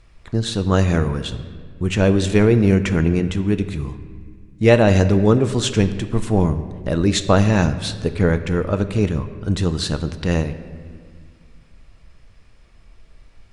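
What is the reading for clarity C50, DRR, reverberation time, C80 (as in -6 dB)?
12.0 dB, 9.5 dB, 1.8 s, 13.0 dB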